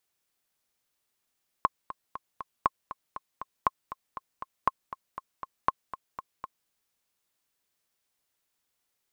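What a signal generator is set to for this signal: metronome 238 bpm, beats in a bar 4, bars 5, 1070 Hz, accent 14.5 dB -8.5 dBFS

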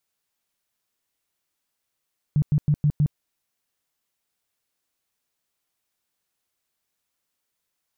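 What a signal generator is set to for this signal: tone bursts 148 Hz, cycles 9, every 0.16 s, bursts 5, -15.5 dBFS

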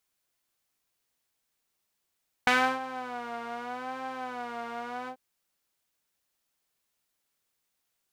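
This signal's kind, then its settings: synth patch with vibrato B3, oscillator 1 saw, interval +19 st, detune 15 cents, sub -21 dB, noise -15 dB, filter bandpass, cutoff 500 Hz, Q 1.3, filter envelope 2 oct, filter sustain 50%, attack 2.2 ms, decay 0.32 s, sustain -18 dB, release 0.08 s, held 2.61 s, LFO 0.8 Hz, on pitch 96 cents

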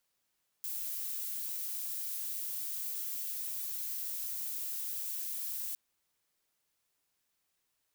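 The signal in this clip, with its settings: noise violet, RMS -38 dBFS 5.11 s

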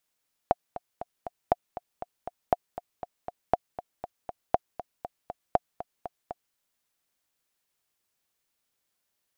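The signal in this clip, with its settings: metronome 238 bpm, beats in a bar 4, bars 6, 712 Hz, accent 14.5 dB -7 dBFS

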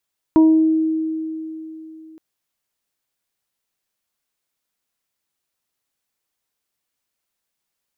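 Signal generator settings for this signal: additive tone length 1.82 s, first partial 318 Hz, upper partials -17/-12.5 dB, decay 3.35 s, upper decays 0.82/0.39 s, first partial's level -7.5 dB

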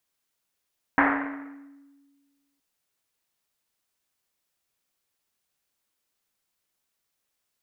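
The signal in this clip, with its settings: Risset drum length 1.62 s, pitch 280 Hz, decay 1.75 s, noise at 1300 Hz, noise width 1400 Hz, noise 55%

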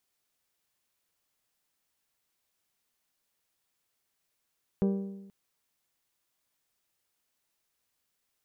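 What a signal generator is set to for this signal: metal hit bell, length 0.48 s, lowest mode 196 Hz, modes 8, decay 1.05 s, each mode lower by 6 dB, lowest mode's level -22 dB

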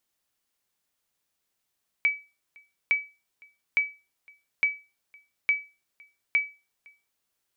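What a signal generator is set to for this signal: sonar ping 2290 Hz, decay 0.29 s, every 0.86 s, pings 6, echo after 0.51 s, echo -29 dB -15 dBFS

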